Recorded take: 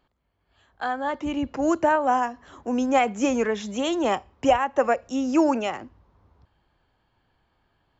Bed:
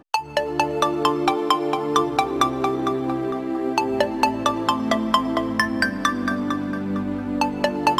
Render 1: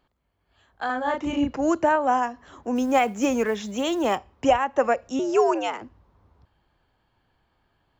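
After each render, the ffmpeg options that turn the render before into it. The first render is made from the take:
-filter_complex "[0:a]asettb=1/sr,asplit=3[a][b][c];[a]atrim=end=0.864[d];[b]atrim=start=0.86:end=1.57,asetpts=PTS-STARTPTS,afade=t=in:d=0.004:c=qsin,afade=t=out:st=0.706:d=0.004:c=qsin,asplit=2[e][f];[f]adelay=35,volume=-2dB[g];[e][g]amix=inputs=2:normalize=0,atrim=end_sample=31311[h];[c]atrim=start=1.566[i];[d][h]acrossfade=d=0.004:c1=hsin:c2=qsin[j];[j][i]acrossfade=d=0.004:c1=qsin:c2=hsin,asplit=3[k][l][m];[k]afade=t=out:st=2.75:d=0.02[n];[l]acrusher=bits=8:mode=log:mix=0:aa=0.000001,afade=t=in:st=2.75:d=0.02,afade=t=out:st=4.16:d=0.02[o];[m]afade=t=in:st=4.16:d=0.02[p];[n][o][p]amix=inputs=3:normalize=0,asettb=1/sr,asplit=3[q][r][s];[q]atrim=end=5.194[t];[r]atrim=start=5.19:end=5.82,asetpts=PTS-STARTPTS,afade=t=in:d=0.004:c=qsin,afade=t=out:st=0.626:d=0.004:c=qsin,afreqshift=93[u];[s]atrim=start=5.816[v];[t][u]acrossfade=d=0.004:c1=hsin:c2=qsin[w];[w][v]acrossfade=d=0.004:c1=qsin:c2=hsin"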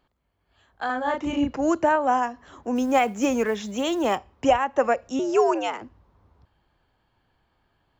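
-af anull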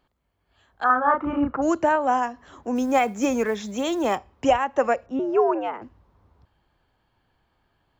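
-filter_complex "[0:a]asettb=1/sr,asplit=3[a][b][c];[a]atrim=end=0.844[d];[b]atrim=start=0.84:end=1.62,asetpts=PTS-STARTPTS,afade=t=in:d=0.004:c=qsin,afade=t=out:st=0.776:d=0.004:c=qsin,lowpass=f=1.3k:t=q:w=6[e];[c]atrim=start=1.616[f];[d][e]acrossfade=d=0.004:c1=hsin:c2=qsin[g];[g][f]acrossfade=d=0.004:c1=qsin:c2=hsin,asettb=1/sr,asplit=3[h][i][j];[h]atrim=end=2.684[k];[i]atrim=start=2.68:end=4.31,asetpts=PTS-STARTPTS,afade=t=in:d=0.004:c=qsin,afade=t=out:st=1.626:d=0.004:c=qsin,bandreject=f=2.9k:w=9.7[l];[j]atrim=start=4.306[m];[k][l]acrossfade=d=0.004:c1=hsin:c2=qsin[n];[n][m]acrossfade=d=0.004:c1=qsin:c2=hsin,asettb=1/sr,asplit=3[o][p][q];[o]atrim=end=5.064[r];[p]atrim=start=5.06:end=5.82,asetpts=PTS-STARTPTS,afade=t=in:d=0.004:c=qsin,afade=t=out:st=0.756:d=0.004:c=qsin,lowpass=1.6k[s];[q]atrim=start=5.816[t];[r][s]acrossfade=d=0.004:c1=hsin:c2=qsin[u];[u][t]acrossfade=d=0.004:c1=qsin:c2=hsin"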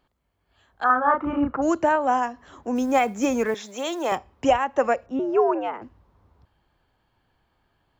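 -filter_complex "[0:a]asettb=1/sr,asplit=3[a][b][c];[a]atrim=end=3.544[d];[b]atrim=start=3.54:end=4.12,asetpts=PTS-STARTPTS,afade=t=in:d=0.004:c=qsin,afade=t=out:st=0.576:d=0.004:c=qsin,highpass=420[e];[c]atrim=start=4.116[f];[d][e]acrossfade=d=0.004:c1=hsin:c2=qsin[g];[g][f]acrossfade=d=0.004:c1=qsin:c2=hsin"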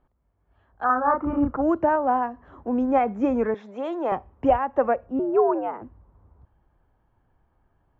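-af "lowpass=1.3k,lowshelf=f=83:g=8.5"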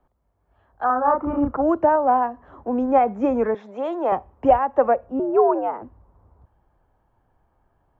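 -filter_complex "[0:a]acrossover=split=160|540|940[a][b][c][d];[c]acontrast=86[e];[d]alimiter=limit=-23dB:level=0:latency=1:release=228[f];[a][b][e][f]amix=inputs=4:normalize=0"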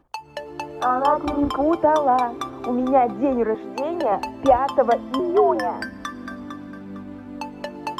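-filter_complex "[1:a]volume=-10.5dB[a];[0:a][a]amix=inputs=2:normalize=0"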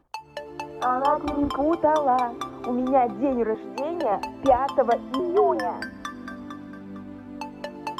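-af "volume=-3dB"

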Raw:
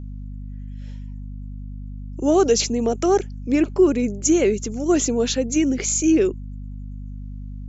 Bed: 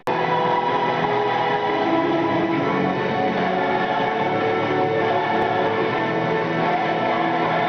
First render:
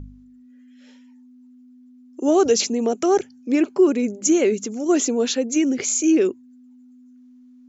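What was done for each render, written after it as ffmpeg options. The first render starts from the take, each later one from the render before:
-af "bandreject=f=50:t=h:w=4,bandreject=f=100:t=h:w=4,bandreject=f=150:t=h:w=4,bandreject=f=200:t=h:w=4"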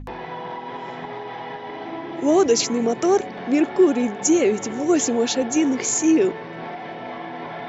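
-filter_complex "[1:a]volume=-12.5dB[a];[0:a][a]amix=inputs=2:normalize=0"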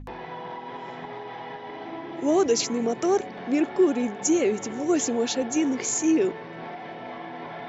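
-af "volume=-4.5dB"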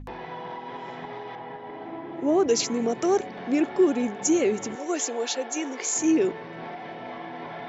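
-filter_complex "[0:a]asettb=1/sr,asplit=3[a][b][c];[a]atrim=end=1.354[d];[b]atrim=start=1.35:end=2.49,asetpts=PTS-STARTPTS,afade=t=in:d=0.004:c=qsin,afade=t=out:st=1.136:d=0.004:c=qsin,lowpass=f=1.5k:p=1[e];[c]atrim=start=2.486[f];[d][e]acrossfade=d=0.004:c1=hsin:c2=qsin[g];[g][f]acrossfade=d=0.004:c1=qsin:c2=hsin,asettb=1/sr,asplit=3[h][i][j];[h]atrim=end=4.754[k];[i]atrim=start=4.75:end=5.96,asetpts=PTS-STARTPTS,afade=t=in:d=0.004:c=qsin,afade=t=out:st=1.206:d=0.004:c=qsin,highpass=470[l];[j]atrim=start=5.956[m];[k][l]acrossfade=d=0.004:c1=hsin:c2=qsin[n];[n][m]acrossfade=d=0.004:c1=qsin:c2=hsin"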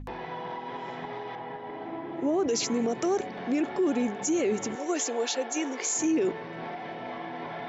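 -af "alimiter=limit=-19.5dB:level=0:latency=1:release=24"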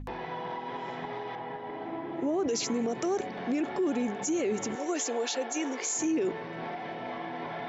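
-af "alimiter=limit=-22.5dB:level=0:latency=1:release=40"

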